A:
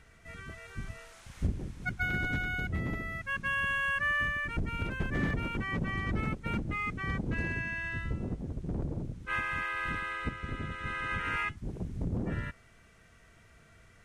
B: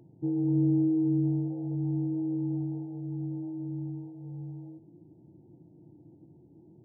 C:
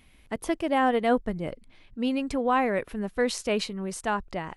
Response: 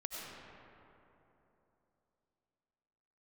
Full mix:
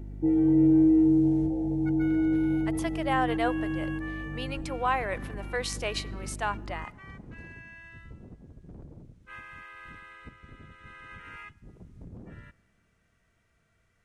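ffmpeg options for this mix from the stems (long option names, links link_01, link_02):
-filter_complex "[0:a]volume=-12.5dB,asplit=2[link_01][link_02];[link_02]volume=-22.5dB[link_03];[1:a]highpass=250,aeval=exprs='val(0)+0.00501*(sin(2*PI*50*n/s)+sin(2*PI*2*50*n/s)/2+sin(2*PI*3*50*n/s)/3+sin(2*PI*4*50*n/s)/4+sin(2*PI*5*50*n/s)/5)':channel_layout=same,acontrast=88,volume=0.5dB[link_04];[2:a]highpass=650,adelay=2350,volume=-1.5dB,asplit=2[link_05][link_06];[link_06]volume=-22.5dB[link_07];[3:a]atrim=start_sample=2205[link_08];[link_03][link_07]amix=inputs=2:normalize=0[link_09];[link_09][link_08]afir=irnorm=-1:irlink=0[link_10];[link_01][link_04][link_05][link_10]amix=inputs=4:normalize=0"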